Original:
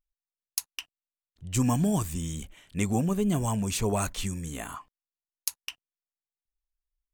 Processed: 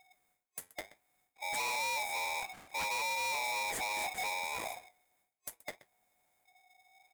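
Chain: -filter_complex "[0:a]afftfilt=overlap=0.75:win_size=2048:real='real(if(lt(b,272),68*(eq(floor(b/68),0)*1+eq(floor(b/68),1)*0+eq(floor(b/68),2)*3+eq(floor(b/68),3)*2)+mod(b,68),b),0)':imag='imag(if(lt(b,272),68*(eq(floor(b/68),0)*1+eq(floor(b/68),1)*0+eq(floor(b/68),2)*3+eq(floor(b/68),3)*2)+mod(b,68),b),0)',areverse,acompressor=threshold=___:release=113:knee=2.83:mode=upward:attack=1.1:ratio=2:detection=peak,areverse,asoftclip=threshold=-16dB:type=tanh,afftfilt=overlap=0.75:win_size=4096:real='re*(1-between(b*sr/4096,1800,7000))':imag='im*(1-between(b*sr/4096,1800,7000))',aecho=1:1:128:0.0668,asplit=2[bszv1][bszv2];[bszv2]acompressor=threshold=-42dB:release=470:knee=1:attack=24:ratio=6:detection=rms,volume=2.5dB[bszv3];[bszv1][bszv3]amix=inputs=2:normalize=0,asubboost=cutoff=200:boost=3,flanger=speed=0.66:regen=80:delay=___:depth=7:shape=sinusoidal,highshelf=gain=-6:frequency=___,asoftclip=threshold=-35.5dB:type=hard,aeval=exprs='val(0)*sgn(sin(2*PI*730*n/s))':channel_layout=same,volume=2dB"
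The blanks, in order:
-50dB, 4.1, 4500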